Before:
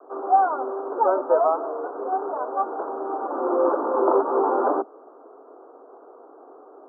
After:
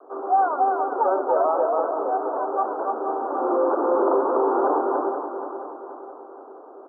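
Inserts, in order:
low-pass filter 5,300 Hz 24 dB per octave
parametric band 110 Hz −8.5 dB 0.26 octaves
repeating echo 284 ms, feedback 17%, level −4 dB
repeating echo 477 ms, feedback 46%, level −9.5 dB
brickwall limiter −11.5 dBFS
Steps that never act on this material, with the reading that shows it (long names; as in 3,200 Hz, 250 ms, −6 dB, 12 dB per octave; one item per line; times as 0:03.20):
low-pass filter 5,300 Hz: nothing at its input above 1,500 Hz
parametric band 110 Hz: nothing at its input below 230 Hz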